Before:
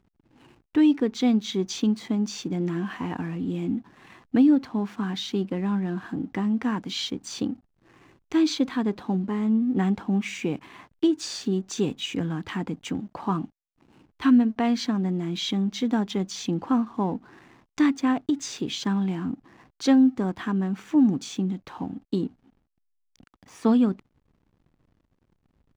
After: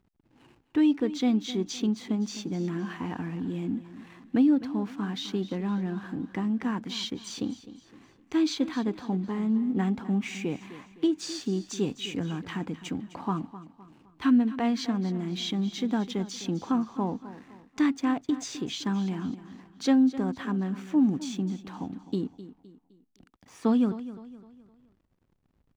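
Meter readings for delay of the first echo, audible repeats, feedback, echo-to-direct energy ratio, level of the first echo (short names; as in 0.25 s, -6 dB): 0.257 s, 3, 40%, -14.0 dB, -15.0 dB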